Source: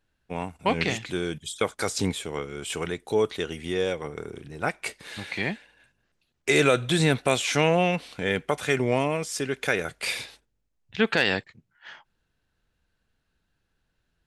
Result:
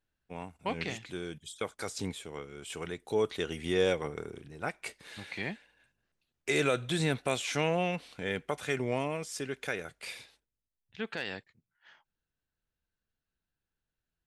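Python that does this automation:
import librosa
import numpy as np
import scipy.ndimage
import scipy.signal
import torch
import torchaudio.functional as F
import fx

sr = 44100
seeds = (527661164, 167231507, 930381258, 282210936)

y = fx.gain(x, sr, db=fx.line((2.65, -10.0), (3.91, 0.0), (4.55, -8.0), (9.49, -8.0), (10.24, -14.5)))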